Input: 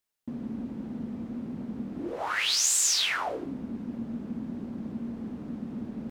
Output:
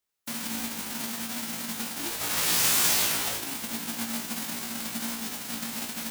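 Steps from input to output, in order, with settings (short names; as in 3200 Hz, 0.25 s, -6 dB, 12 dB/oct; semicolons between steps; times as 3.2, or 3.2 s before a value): spectral whitening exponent 0.1; flutter echo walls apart 3 m, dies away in 0.22 s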